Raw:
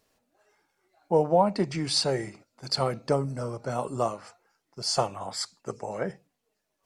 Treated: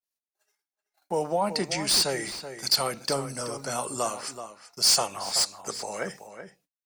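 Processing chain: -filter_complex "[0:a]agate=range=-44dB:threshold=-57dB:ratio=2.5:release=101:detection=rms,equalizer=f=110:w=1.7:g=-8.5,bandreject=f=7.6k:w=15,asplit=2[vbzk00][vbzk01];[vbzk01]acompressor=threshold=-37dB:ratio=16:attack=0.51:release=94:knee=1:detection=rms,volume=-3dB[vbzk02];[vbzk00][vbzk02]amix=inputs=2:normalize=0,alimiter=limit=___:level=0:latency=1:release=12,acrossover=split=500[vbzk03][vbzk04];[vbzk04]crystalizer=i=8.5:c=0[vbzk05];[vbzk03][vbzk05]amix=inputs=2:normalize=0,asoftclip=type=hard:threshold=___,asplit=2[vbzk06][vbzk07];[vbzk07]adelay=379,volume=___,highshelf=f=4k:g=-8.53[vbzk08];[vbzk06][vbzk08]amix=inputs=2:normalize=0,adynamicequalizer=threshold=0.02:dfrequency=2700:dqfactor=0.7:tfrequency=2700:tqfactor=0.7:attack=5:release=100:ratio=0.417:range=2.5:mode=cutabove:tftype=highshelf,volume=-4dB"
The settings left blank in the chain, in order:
-14.5dB, -11.5dB, -10dB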